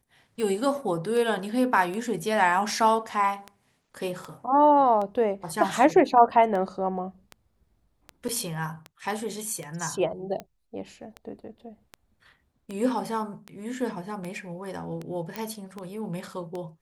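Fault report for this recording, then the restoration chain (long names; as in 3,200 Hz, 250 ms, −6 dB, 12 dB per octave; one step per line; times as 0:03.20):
scratch tick 78 rpm −22 dBFS
0:08.28–0:08.29: drop-out 6.6 ms
0:15.36: click −17 dBFS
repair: click removal
repair the gap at 0:08.28, 6.6 ms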